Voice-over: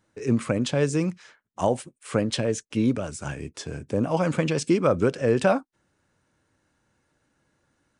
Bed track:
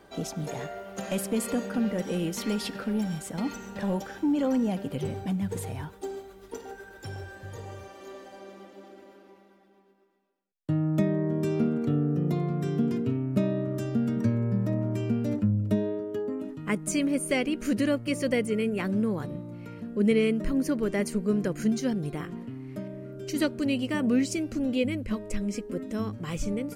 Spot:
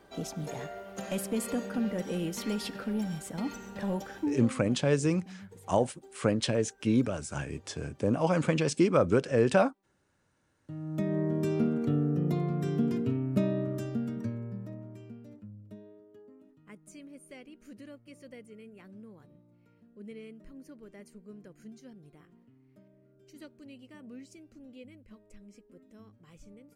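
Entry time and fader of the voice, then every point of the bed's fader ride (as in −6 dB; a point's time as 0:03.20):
4.10 s, −3.0 dB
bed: 0:04.24 −3.5 dB
0:04.54 −18.5 dB
0:10.60 −18.5 dB
0:11.18 −2 dB
0:13.64 −2 dB
0:15.38 −22.5 dB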